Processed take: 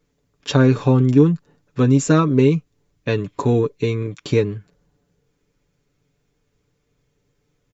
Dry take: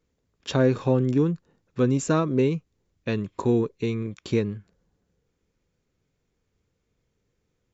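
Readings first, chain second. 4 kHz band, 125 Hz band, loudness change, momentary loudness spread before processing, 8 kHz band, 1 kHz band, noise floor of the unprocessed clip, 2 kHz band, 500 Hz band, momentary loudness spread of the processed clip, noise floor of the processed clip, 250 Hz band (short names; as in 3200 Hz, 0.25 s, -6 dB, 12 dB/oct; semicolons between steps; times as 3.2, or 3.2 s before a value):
+6.5 dB, +8.5 dB, +7.0 dB, 13 LU, n/a, +6.5 dB, -76 dBFS, +7.0 dB, +5.5 dB, 12 LU, -70 dBFS, +7.0 dB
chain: comb 6.9 ms, depth 57%; gain +5.5 dB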